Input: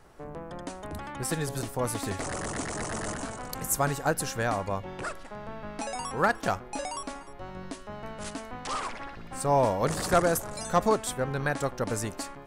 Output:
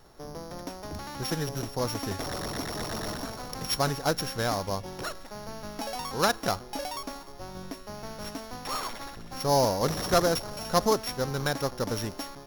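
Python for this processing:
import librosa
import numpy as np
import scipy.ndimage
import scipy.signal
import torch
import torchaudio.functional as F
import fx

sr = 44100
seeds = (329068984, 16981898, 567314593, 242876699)

y = np.r_[np.sort(x[:len(x) // 8 * 8].reshape(-1, 8), axis=1).ravel(), x[len(x) // 8 * 8:]]
y = fx.doppler_dist(y, sr, depth_ms=0.18)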